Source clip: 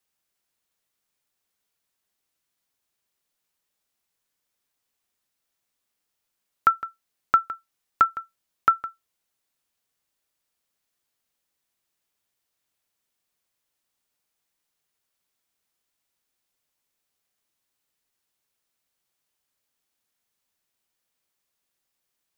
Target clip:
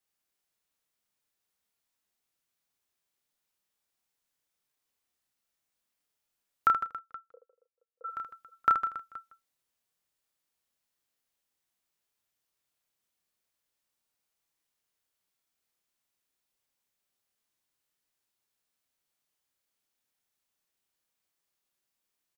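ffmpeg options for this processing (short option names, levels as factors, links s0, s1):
-filter_complex "[0:a]asplit=3[s0][s1][s2];[s0]afade=t=out:st=6.82:d=0.02[s3];[s1]asuperpass=centerf=490:order=4:qfactor=7.6,afade=t=in:st=6.82:d=0.02,afade=t=out:st=8.04:d=0.02[s4];[s2]afade=t=in:st=8.04:d=0.02[s5];[s3][s4][s5]amix=inputs=3:normalize=0,asplit=2[s6][s7];[s7]aecho=0:1:30|78|154.8|277.7|474.3:0.631|0.398|0.251|0.158|0.1[s8];[s6][s8]amix=inputs=2:normalize=0,volume=0.501"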